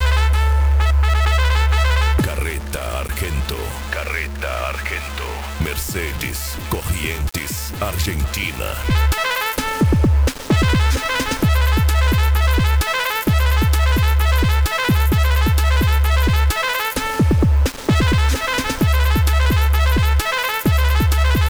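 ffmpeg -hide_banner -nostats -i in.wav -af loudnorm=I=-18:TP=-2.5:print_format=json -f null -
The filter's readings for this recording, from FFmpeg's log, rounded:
"input_i" : "-17.9",
"input_tp" : "-8.4",
"input_lra" : "6.8",
"input_thresh" : "-27.9",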